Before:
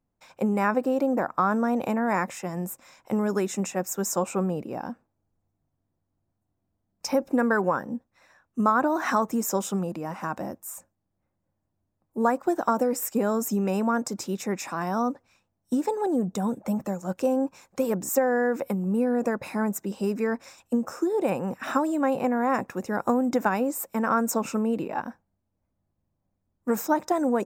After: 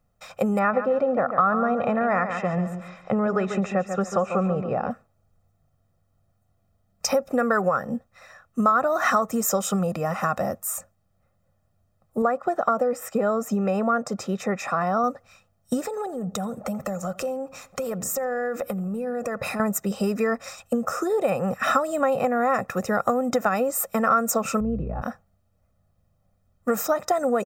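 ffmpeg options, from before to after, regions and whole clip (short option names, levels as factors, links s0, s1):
-filter_complex "[0:a]asettb=1/sr,asplit=3[s0][s1][s2];[s0]atrim=end=0.594[s3];[s1]atrim=start=0.59:end=4.91,asetpts=PTS-STARTPTS,afade=t=in:d=0.004:c=qsin,afade=t=out:st=4.316:d=0.004:c=qsin,lowpass=2500,aecho=1:1:141|282|423:0.299|0.0866|0.0251,atrim=end_sample=190512[s4];[s2]atrim=start=4.906[s5];[s3][s4]acrossfade=d=0.004:c1=hsin:c2=qsin[s6];[s6][s5]acrossfade=d=0.004:c1=qsin:c2=hsin,asettb=1/sr,asplit=3[s7][s8][s9];[s7]atrim=end=12.224[s10];[s8]atrim=start=12.22:end=15.04,asetpts=PTS-STARTPTS,afade=t=in:d=0.004:c=qsin,afade=t=out:st=2.816:d=0.004:c=qsin,lowpass=f=1700:p=1,lowshelf=f=130:g=-7.5[s11];[s9]atrim=start=15.036[s12];[s10][s11]acrossfade=d=0.004:c1=hsin:c2=qsin[s13];[s13][s12]acrossfade=d=0.004:c1=qsin:c2=hsin,asettb=1/sr,asplit=3[s14][s15][s16];[s14]atrim=end=15.854[s17];[s15]atrim=start=15.85:end=19.6,asetpts=PTS-STARTPTS,afade=t=in:d=0.004:c=qsin,afade=t=out:st=3.746:d=0.004:c=qsin,acompressor=threshold=0.02:ratio=6:attack=3.2:release=140:knee=1:detection=peak,asplit=2[s18][s19];[s19]adelay=84,lowpass=f=1700:p=1,volume=0.119,asplit=2[s20][s21];[s21]adelay=84,lowpass=f=1700:p=1,volume=0.47,asplit=2[s22][s23];[s23]adelay=84,lowpass=f=1700:p=1,volume=0.47,asplit=2[s24][s25];[s25]adelay=84,lowpass=f=1700:p=1,volume=0.47[s26];[s18][s20][s22][s24][s26]amix=inputs=5:normalize=0,atrim=end_sample=165375[s27];[s16]atrim=start=19.596[s28];[s17][s27]acrossfade=d=0.004:c1=hsin:c2=qsin[s29];[s29][s28]acrossfade=d=0.004:c1=qsin:c2=hsin,asettb=1/sr,asplit=3[s30][s31][s32];[s30]atrim=end=24.604[s33];[s31]atrim=start=24.6:end=25.02,asetpts=PTS-STARTPTS,afade=t=in:d=0.004:c=qsin,afade=t=out:st=0.416:d=0.004:c=qsin,bandpass=f=140:t=q:w=0.91,aeval=exprs='val(0)+0.00891*(sin(2*PI*60*n/s)+sin(2*PI*2*60*n/s)/2+sin(2*PI*3*60*n/s)/3+sin(2*PI*4*60*n/s)/4+sin(2*PI*5*60*n/s)/5)':c=same[s34];[s32]atrim=start=25.016[s35];[s33][s34]acrossfade=d=0.004:c1=hsin:c2=qsin[s36];[s36][s35]acrossfade=d=0.004:c1=qsin:c2=hsin,aecho=1:1:1.6:0.71,acompressor=threshold=0.0355:ratio=3,equalizer=f=1400:t=o:w=0.37:g=5,volume=2.37"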